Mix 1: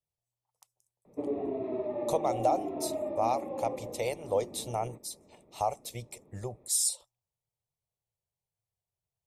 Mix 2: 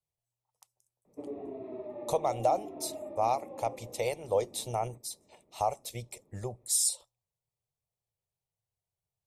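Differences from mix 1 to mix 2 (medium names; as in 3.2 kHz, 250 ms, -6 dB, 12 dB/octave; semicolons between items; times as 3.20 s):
background -7.5 dB; reverb: on, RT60 0.30 s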